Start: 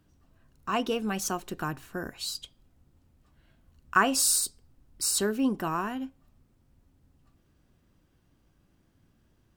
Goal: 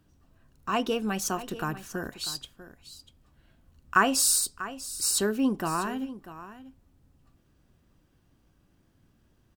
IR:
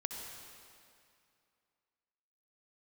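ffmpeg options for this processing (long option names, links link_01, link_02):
-af "bandreject=frequency=2100:width=30,aecho=1:1:643:0.188,volume=1dB"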